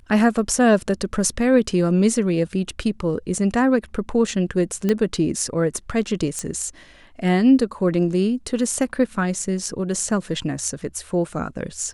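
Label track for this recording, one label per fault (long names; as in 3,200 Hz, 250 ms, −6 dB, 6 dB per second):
4.890000	4.890000	click −9 dBFS
6.390000	6.390000	click −13 dBFS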